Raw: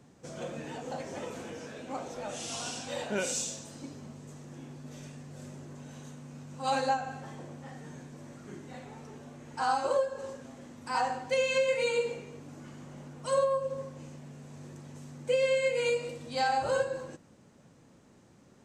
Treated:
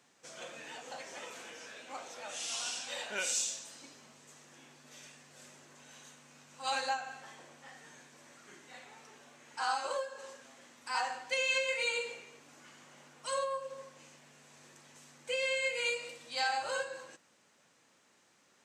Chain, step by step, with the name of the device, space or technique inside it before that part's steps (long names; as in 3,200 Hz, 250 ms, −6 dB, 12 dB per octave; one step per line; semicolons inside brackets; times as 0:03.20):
filter by subtraction (in parallel: low-pass filter 2,300 Hz 12 dB per octave + polarity inversion)